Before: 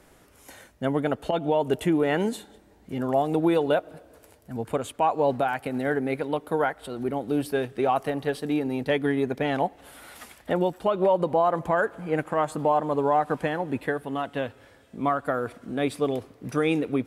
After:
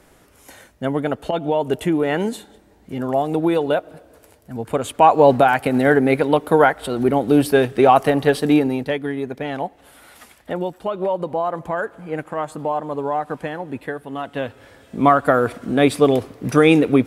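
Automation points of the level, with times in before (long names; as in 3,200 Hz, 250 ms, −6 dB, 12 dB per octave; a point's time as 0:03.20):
0:04.63 +3.5 dB
0:05.05 +11 dB
0:08.56 +11 dB
0:09.00 −0.5 dB
0:14.04 −0.5 dB
0:15.01 +11 dB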